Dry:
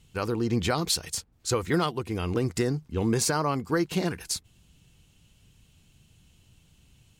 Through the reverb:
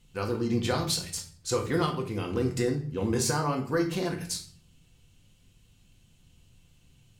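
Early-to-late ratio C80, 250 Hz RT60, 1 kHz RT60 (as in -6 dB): 13.5 dB, 0.70 s, 0.40 s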